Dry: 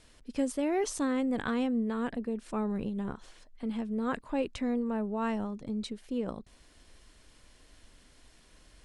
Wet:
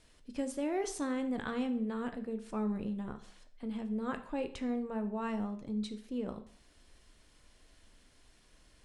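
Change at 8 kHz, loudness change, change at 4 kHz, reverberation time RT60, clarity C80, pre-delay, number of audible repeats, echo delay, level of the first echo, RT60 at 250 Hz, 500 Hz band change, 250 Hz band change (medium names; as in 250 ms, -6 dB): no reading, -4.0 dB, -4.5 dB, 0.55 s, 16.0 dB, 6 ms, no echo, no echo, no echo, 0.55 s, -4.5 dB, -4.0 dB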